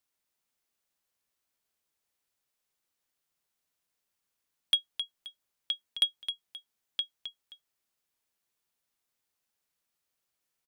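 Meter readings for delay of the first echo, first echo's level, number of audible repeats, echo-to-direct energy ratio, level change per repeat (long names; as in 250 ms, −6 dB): 264 ms, −9.0 dB, 2, −8.5 dB, −10.5 dB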